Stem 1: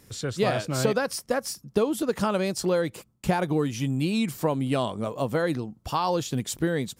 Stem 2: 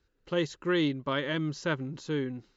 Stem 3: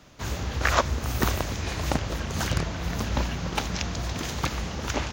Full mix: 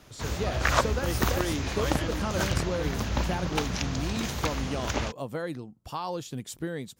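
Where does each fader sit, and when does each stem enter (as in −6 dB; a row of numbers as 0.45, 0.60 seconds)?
−8.0, −5.5, −1.5 decibels; 0.00, 0.70, 0.00 seconds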